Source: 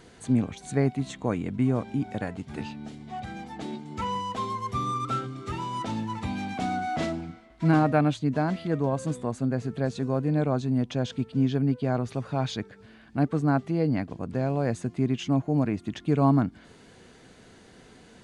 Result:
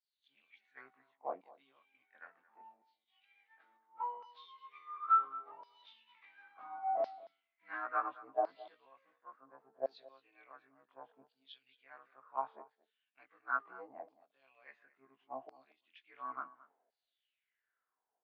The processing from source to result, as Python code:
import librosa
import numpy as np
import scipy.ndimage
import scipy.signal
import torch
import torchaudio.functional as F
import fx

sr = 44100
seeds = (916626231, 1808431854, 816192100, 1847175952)

p1 = fx.frame_reverse(x, sr, frame_ms=45.0)
p2 = fx.dynamic_eq(p1, sr, hz=1100.0, q=5.7, threshold_db=-53.0, ratio=4.0, max_db=8)
p3 = fx.filter_lfo_bandpass(p2, sr, shape='saw_down', hz=0.71, low_hz=620.0, high_hz=5100.0, q=5.9)
p4 = fx.bandpass_edges(p3, sr, low_hz=410.0, high_hz=7400.0)
p5 = fx.air_absorb(p4, sr, metres=310.0)
p6 = p5 + fx.echo_single(p5, sr, ms=226, db=-15.0, dry=0)
y = fx.band_widen(p6, sr, depth_pct=70)